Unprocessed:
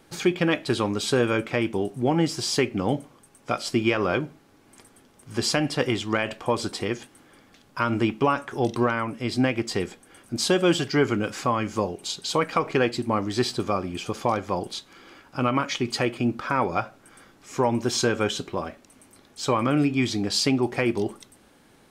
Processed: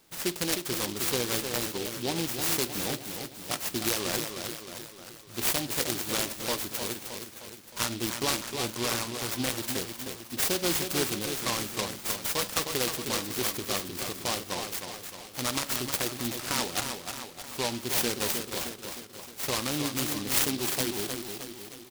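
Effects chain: tilt shelf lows -6 dB, about 1.1 kHz; feedback delay 310 ms, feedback 55%, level -6.5 dB; delay time shaken by noise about 3.6 kHz, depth 0.18 ms; trim -5.5 dB

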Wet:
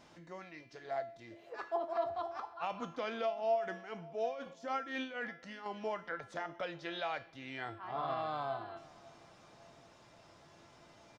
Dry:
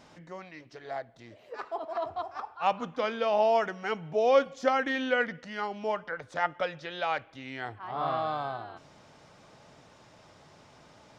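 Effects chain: peak limiter -23.5 dBFS, peak gain reduction 11 dB; 3.23–5.66 s: tremolo 4 Hz, depth 73%; feedback comb 340 Hz, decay 0.44 s, harmonics all, mix 80%; feedback delay 558 ms, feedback 43%, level -23.5 dB; trim +7.5 dB

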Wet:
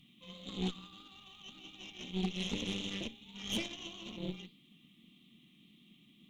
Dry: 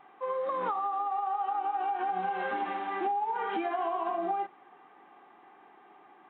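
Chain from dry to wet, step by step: elliptic band-stop 210–3300 Hz, stop band 40 dB; flange 1.7 Hz, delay 3.5 ms, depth 9.9 ms, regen -73%; Chebyshev shaper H 6 -12 dB, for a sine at -42.5 dBFS; trim +18 dB

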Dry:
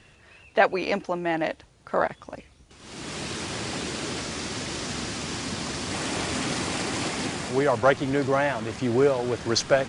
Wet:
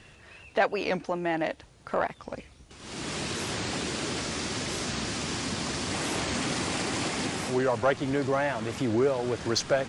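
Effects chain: in parallel at +2.5 dB: compression, threshold -32 dBFS, peak gain reduction 17 dB; on the sum: saturation -7 dBFS, distortion -24 dB; warped record 45 rpm, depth 160 cents; trim -5.5 dB

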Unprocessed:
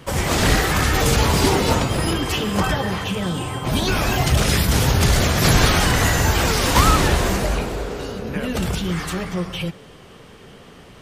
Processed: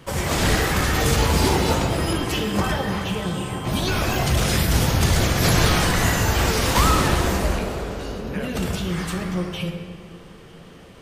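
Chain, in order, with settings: on a send: treble shelf 9.8 kHz +9 dB + reverberation RT60 2.1 s, pre-delay 5 ms, DRR 5 dB; on the sum: trim -3.5 dB

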